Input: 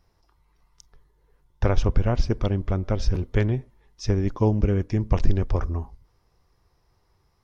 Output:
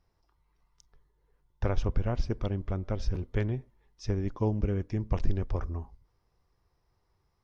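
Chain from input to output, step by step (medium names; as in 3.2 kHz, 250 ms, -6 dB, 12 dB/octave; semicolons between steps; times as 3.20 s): treble shelf 5.7 kHz -4.5 dB; trim -7.5 dB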